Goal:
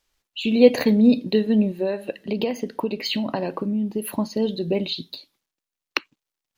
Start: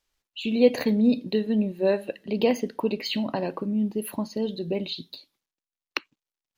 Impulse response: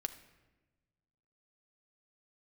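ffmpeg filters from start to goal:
-filter_complex "[0:a]asettb=1/sr,asplit=3[a][b][c];[a]atrim=end=1.814[d];[b]atrim=start=1.81:end=4.08,asetpts=PTS-STARTPTS,afade=t=in:d=0.004:c=qsin,afade=t=out:st=2.266:d=0.004:c=qsin,acompressor=threshold=-26dB:ratio=6[e];[c]atrim=start=4.076[f];[d][e]acrossfade=d=0.004:c1=hsin:c2=qsin[g];[g][f]acrossfade=d=0.004:c1=qsin:c2=hsin,volume=5dB"

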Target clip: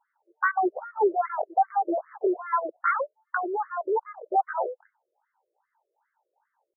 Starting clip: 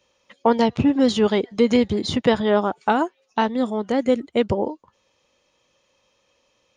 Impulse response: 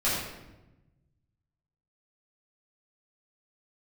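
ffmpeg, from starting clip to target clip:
-af "asetrate=72056,aresample=44100,atempo=0.612027,highshelf=f=2.2k:g=-10.5,afftfilt=real='re*between(b*sr/1024,430*pow(1600/430,0.5+0.5*sin(2*PI*2.5*pts/sr))/1.41,430*pow(1600/430,0.5+0.5*sin(2*PI*2.5*pts/sr))*1.41)':imag='im*between(b*sr/1024,430*pow(1600/430,0.5+0.5*sin(2*PI*2.5*pts/sr))/1.41,430*pow(1600/430,0.5+0.5*sin(2*PI*2.5*pts/sr))*1.41)':win_size=1024:overlap=0.75"

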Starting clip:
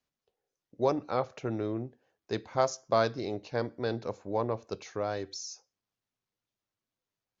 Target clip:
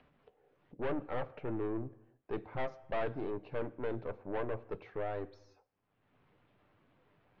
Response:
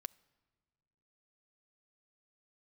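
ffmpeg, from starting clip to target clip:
-filter_complex "[0:a]highshelf=f=2.2k:g=-10.5,acompressor=mode=upward:threshold=-47dB:ratio=2.5,aeval=exprs='(tanh(44.7*val(0)+0.5)-tanh(0.5))/44.7':c=same,lowpass=f=3k:w=0.5412,lowpass=f=3k:w=1.3066[a];[1:a]atrim=start_sample=2205,afade=t=out:st=0.25:d=0.01,atrim=end_sample=11466,asetrate=26019,aresample=44100[b];[a][b]afir=irnorm=-1:irlink=0,volume=3dB"

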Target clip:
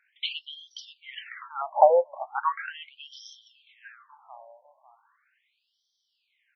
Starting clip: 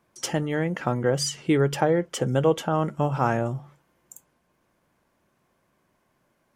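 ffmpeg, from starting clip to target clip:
-filter_complex "[0:a]asplit=2[a][b];[b]adelay=548,lowpass=f=3.5k:p=1,volume=-18.5dB,asplit=2[c][d];[d]adelay=548,lowpass=f=3.5k:p=1,volume=0.3,asplit=2[e][f];[f]adelay=548,lowpass=f=3.5k:p=1,volume=0.3[g];[a][c][e][g]amix=inputs=4:normalize=0,afftfilt=real='re*between(b*sr/1024,720*pow(4400/720,0.5+0.5*sin(2*PI*0.38*pts/sr))/1.41,720*pow(4400/720,0.5+0.5*sin(2*PI*0.38*pts/sr))*1.41)':imag='im*between(b*sr/1024,720*pow(4400/720,0.5+0.5*sin(2*PI*0.38*pts/sr))/1.41,720*pow(4400/720,0.5+0.5*sin(2*PI*0.38*pts/sr))*1.41)':win_size=1024:overlap=0.75,volume=8.5dB"

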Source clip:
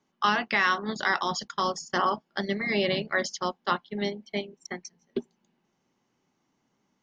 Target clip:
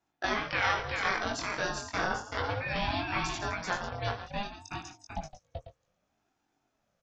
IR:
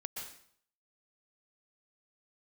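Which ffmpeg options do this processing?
-af "aecho=1:1:59|75|165|385|497:0.266|0.237|0.188|0.631|0.224,flanger=delay=18.5:depth=4.1:speed=0.35,aeval=exprs='val(0)*sin(2*PI*410*n/s+410*0.3/0.62*sin(2*PI*0.62*n/s))':c=same"

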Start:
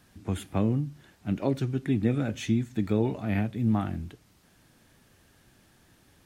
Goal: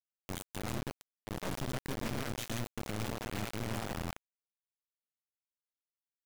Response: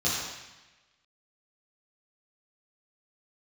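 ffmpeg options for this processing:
-filter_complex "[0:a]bandreject=f=50:t=h:w=6,bandreject=f=100:t=h:w=6,bandreject=f=150:t=h:w=6,bandreject=f=200:t=h:w=6,bandreject=f=250:t=h:w=6,bandreject=f=300:t=h:w=6,bandreject=f=350:t=h:w=6,aecho=1:1:1.3:0.44,aeval=exprs='(tanh(39.8*val(0)+0.35)-tanh(0.35))/39.8':c=same,aecho=1:1:120|312|619.2|1111|1897:0.631|0.398|0.251|0.158|0.1,asplit=2[a][b];[1:a]atrim=start_sample=2205,atrim=end_sample=6174[c];[b][c]afir=irnorm=-1:irlink=0,volume=-31dB[d];[a][d]amix=inputs=2:normalize=0,acrusher=bits=4:mix=0:aa=0.000001,volume=-5.5dB"

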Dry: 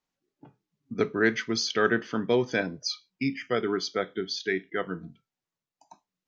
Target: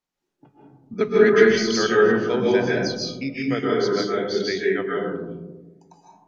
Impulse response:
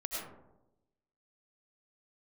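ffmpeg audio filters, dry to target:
-filter_complex "[0:a]asettb=1/sr,asplit=3[a][b][c];[a]atrim=end=0.934[d];[b]atrim=start=0.93:end=1.44,asetpts=PTS-STARTPTS,afade=t=in:d=0.004:c=qsin,afade=t=out:st=0.506:d=0.004:c=qsin,aecho=1:1:4.8:0.9,atrim=end_sample=22491[e];[c]atrim=start=1.436[f];[d][e]acrossfade=d=0.004:c1=hsin:c2=qsin[g];[g][f]acrossfade=d=0.004:c1=qsin:c2=hsin[h];[1:a]atrim=start_sample=2205,asetrate=28665,aresample=44100[i];[h][i]afir=irnorm=-1:irlink=0"

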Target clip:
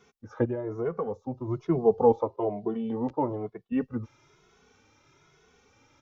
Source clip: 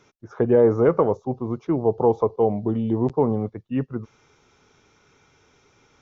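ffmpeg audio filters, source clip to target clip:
-filter_complex "[0:a]asplit=3[a][b][c];[a]afade=t=out:st=0.44:d=0.02[d];[b]acompressor=threshold=-28dB:ratio=3,afade=t=in:st=0.44:d=0.02,afade=t=out:st=1.47:d=0.02[e];[c]afade=t=in:st=1.47:d=0.02[f];[d][e][f]amix=inputs=3:normalize=0,asettb=1/sr,asplit=3[g][h][i];[g]atrim=end=2.124[j];[h]atrim=start=2.12:end=3.72,asetpts=PTS-STARTPTS,afade=t=in:d=0.004:c=qsin,afade=t=out:st=1.596:d=0.004:c=qsin,bass=f=250:g=-10,treble=f=4k:g=-7[k];[i]atrim=start=3.716[l];[j][k]acrossfade=d=0.004:c1=hsin:c2=qsin[m];[m][l]acrossfade=d=0.004:c1=qsin:c2=hsin,asplit=2[n][o];[o]adelay=2.3,afreqshift=1.1[p];[n][p]amix=inputs=2:normalize=1"

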